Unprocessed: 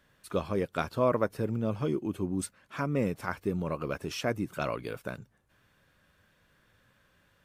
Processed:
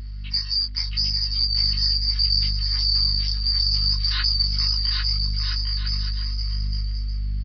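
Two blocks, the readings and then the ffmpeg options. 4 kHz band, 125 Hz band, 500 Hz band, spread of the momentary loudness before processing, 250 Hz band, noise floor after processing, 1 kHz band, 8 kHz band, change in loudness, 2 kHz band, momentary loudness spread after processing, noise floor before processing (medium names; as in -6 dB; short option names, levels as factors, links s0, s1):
+29.0 dB, +8.5 dB, under -35 dB, 9 LU, -11.0 dB, -31 dBFS, -9.5 dB, no reading, +11.0 dB, +2.5 dB, 8 LU, -68 dBFS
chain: -af "afftfilt=real='real(if(lt(b,272),68*(eq(floor(b/68),0)*1+eq(floor(b/68),1)*2+eq(floor(b/68),2)*3+eq(floor(b/68),3)*0)+mod(b,68),b),0)':imag='imag(if(lt(b,272),68*(eq(floor(b/68),0)*1+eq(floor(b/68),1)*2+eq(floor(b/68),2)*3+eq(floor(b/68),3)*0)+mod(b,68),b),0)':win_size=2048:overlap=0.75,asuperpass=centerf=3000:order=8:qfactor=0.52,equalizer=f=4300:w=0.51:g=12,aecho=1:1:4.8:0.59,acompressor=threshold=0.1:ratio=6,aeval=exprs='val(0)+0.00282*(sin(2*PI*50*n/s)+sin(2*PI*2*50*n/s)/2+sin(2*PI*3*50*n/s)/3+sin(2*PI*4*50*n/s)/4+sin(2*PI*5*50*n/s)/5)':c=same,flanger=delay=17:depth=6.4:speed=0.71,acrusher=bits=10:mix=0:aa=0.000001,aemphasis=mode=reproduction:type=bsi,aecho=1:1:800|1320|1658|1878|2021:0.631|0.398|0.251|0.158|0.1,aresample=11025,aresample=44100,volume=2.51"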